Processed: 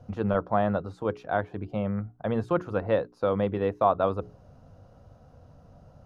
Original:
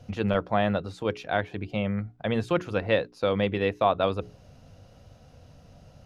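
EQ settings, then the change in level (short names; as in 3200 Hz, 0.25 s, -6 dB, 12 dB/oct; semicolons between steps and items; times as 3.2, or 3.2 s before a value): resonant high shelf 1700 Hz -9.5 dB, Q 1.5; -1.0 dB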